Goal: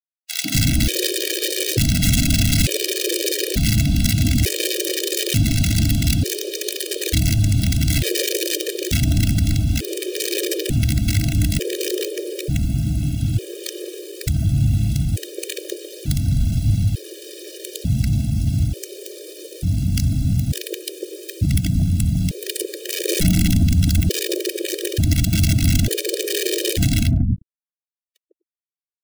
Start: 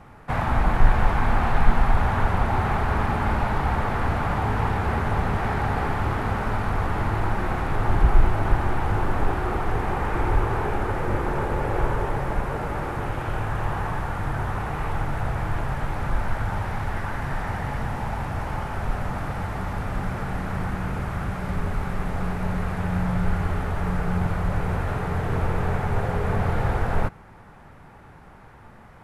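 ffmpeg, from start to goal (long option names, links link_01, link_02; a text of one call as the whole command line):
ffmpeg -i in.wav -filter_complex "[0:a]asplit=2[link_01][link_02];[link_02]asetrate=37084,aresample=44100,atempo=1.18921,volume=-11dB[link_03];[link_01][link_03]amix=inputs=2:normalize=0,highpass=63,tiltshelf=frequency=880:gain=9,acrossover=split=270|1400[link_04][link_05][link_06];[link_06]aexciter=amount=15.5:drive=6.8:freq=3000[link_07];[link_04][link_05][link_07]amix=inputs=3:normalize=0,anlmdn=158,acrusher=bits=6:mix=0:aa=0.000001,aeval=exprs='(mod(3.76*val(0)+1,2)-1)/3.76':channel_layout=same,asuperstop=centerf=1000:order=4:qfactor=0.53,acrossover=split=240|900[link_08][link_09][link_10];[link_09]adelay=150[link_11];[link_08]adelay=250[link_12];[link_12][link_11][link_10]amix=inputs=3:normalize=0,afftfilt=real='re*gt(sin(2*PI*0.56*pts/sr)*(1-2*mod(floor(b*sr/1024/320),2)),0)':imag='im*gt(sin(2*PI*0.56*pts/sr)*(1-2*mod(floor(b*sr/1024/320),2)),0)':win_size=1024:overlap=0.75,volume=5dB" out.wav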